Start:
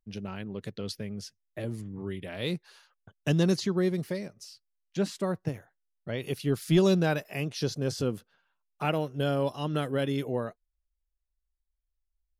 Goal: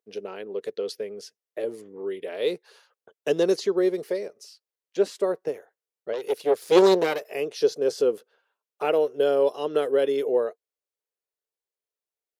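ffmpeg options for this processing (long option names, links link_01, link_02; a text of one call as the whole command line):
ffmpeg -i in.wav -filter_complex "[0:a]asplit=3[link_01][link_02][link_03];[link_01]afade=type=out:start_time=6.12:duration=0.02[link_04];[link_02]aeval=exprs='0.237*(cos(1*acos(clip(val(0)/0.237,-1,1)))-cos(1*PI/2))+0.106*(cos(4*acos(clip(val(0)/0.237,-1,1)))-cos(4*PI/2))+0.00668*(cos(7*acos(clip(val(0)/0.237,-1,1)))-cos(7*PI/2))':channel_layout=same,afade=type=in:start_time=6.12:duration=0.02,afade=type=out:start_time=7.2:duration=0.02[link_05];[link_03]afade=type=in:start_time=7.2:duration=0.02[link_06];[link_04][link_05][link_06]amix=inputs=3:normalize=0,highpass=frequency=440:width_type=q:width=4.9" out.wav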